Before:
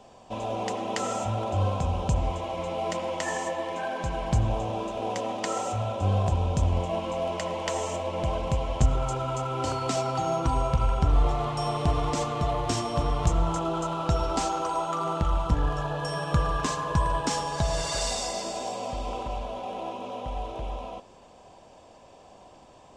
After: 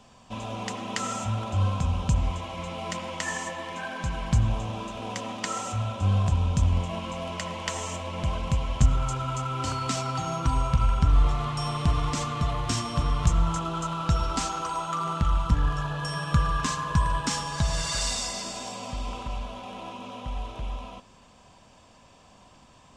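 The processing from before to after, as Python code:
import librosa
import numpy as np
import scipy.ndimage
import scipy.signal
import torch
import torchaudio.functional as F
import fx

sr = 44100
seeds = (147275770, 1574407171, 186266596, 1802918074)

y = fx.band_shelf(x, sr, hz=520.0, db=-9.5, octaves=1.7)
y = y * 10.0 ** (2.0 / 20.0)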